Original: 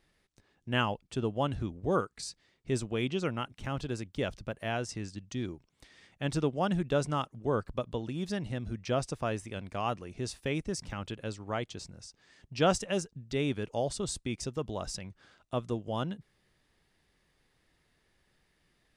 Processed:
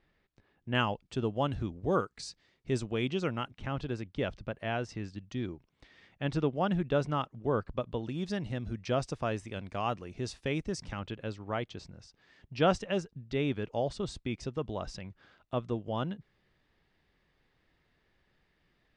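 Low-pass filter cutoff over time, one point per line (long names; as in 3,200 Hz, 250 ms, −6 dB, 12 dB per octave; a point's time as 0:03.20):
3,000 Hz
from 0:00.75 6,300 Hz
from 0:03.51 3,700 Hz
from 0:08.03 6,100 Hz
from 0:10.99 3,800 Hz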